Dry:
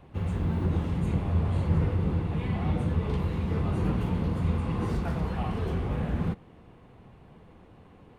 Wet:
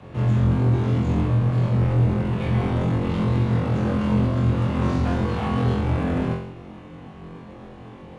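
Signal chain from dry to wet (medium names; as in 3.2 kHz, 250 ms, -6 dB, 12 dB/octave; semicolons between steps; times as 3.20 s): resampled via 16 kHz; in parallel at +1.5 dB: gain riding; on the sum: saturation -23 dBFS, distortion -9 dB; on a send: flutter echo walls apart 3.8 m, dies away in 0.66 s; on the sum: frequency shift +30 Hz; IMA ADPCM 88 kbps 22.05 kHz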